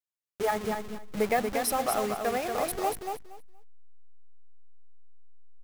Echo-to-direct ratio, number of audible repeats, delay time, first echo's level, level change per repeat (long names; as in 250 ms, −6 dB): −5.5 dB, 2, 235 ms, −5.5 dB, −15.0 dB